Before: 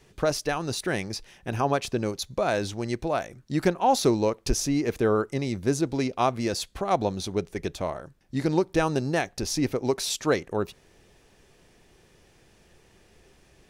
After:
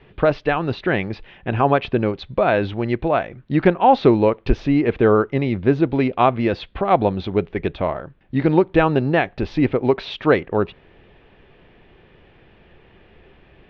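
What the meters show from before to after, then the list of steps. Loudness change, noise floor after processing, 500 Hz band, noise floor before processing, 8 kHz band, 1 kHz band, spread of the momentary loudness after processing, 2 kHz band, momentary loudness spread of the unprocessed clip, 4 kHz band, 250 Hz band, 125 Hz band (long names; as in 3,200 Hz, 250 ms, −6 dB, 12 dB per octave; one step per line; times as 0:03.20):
+7.5 dB, −52 dBFS, +8.0 dB, −60 dBFS, below −25 dB, +8.0 dB, 8 LU, +8.0 dB, 8 LU, −1.0 dB, +8.0 dB, +8.0 dB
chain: Butterworth low-pass 3,300 Hz 36 dB per octave
level +8 dB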